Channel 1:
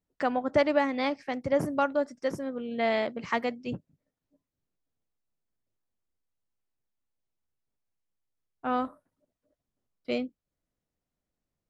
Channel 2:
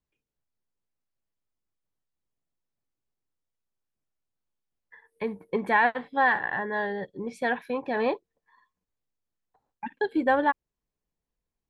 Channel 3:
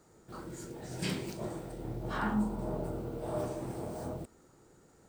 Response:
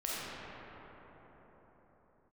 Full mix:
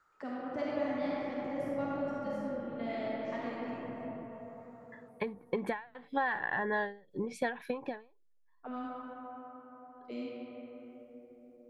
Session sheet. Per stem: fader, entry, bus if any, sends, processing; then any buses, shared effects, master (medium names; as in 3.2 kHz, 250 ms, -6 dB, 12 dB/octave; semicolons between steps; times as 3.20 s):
-5.0 dB, 0.00 s, bus A, send -11.5 dB, none
+1.0 dB, 0.00 s, no bus, no send, compression 12:1, threshold -29 dBFS, peak gain reduction 12.5 dB; endings held to a fixed fall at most 150 dB/s; auto duck -21 dB, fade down 0.85 s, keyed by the first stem
+3.0 dB, 0.00 s, bus A, no send, peaking EQ 4.5 kHz +9.5 dB 2.5 oct
bus A: 0.0 dB, auto-wah 260–1500 Hz, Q 5.7, down, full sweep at -33 dBFS; peak limiter -38 dBFS, peak gain reduction 11.5 dB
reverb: on, pre-delay 5 ms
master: none